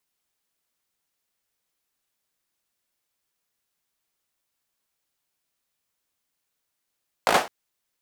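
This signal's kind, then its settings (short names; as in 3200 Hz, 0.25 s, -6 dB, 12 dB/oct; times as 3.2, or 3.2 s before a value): hand clap length 0.21 s, bursts 5, apart 18 ms, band 690 Hz, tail 0.30 s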